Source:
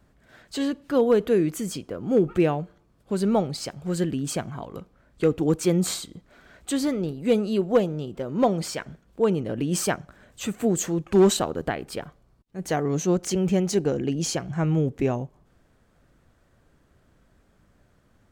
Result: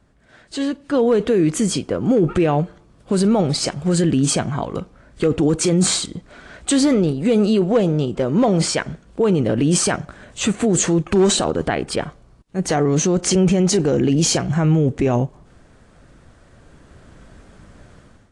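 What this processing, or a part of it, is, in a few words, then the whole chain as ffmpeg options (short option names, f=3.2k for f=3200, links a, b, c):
low-bitrate web radio: -af "dynaudnorm=f=750:g=3:m=14.5dB,alimiter=limit=-11dB:level=0:latency=1:release=19,volume=2.5dB" -ar 22050 -c:a aac -b:a 48k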